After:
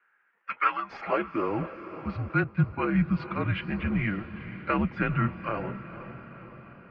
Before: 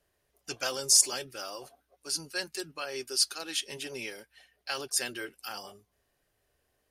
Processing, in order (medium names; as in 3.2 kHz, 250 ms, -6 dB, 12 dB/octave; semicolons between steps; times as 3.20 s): high-pass sweep 1.7 kHz -> 320 Hz, 0.70–1.62 s; in parallel at -10 dB: hard clipper -24.5 dBFS, distortion -7 dB; on the sum: mistuned SSB -210 Hz 230–2400 Hz; echo that smears into a reverb 482 ms, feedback 59%, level -13 dB; 2.44–3.06 s: three bands expanded up and down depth 70%; trim +7 dB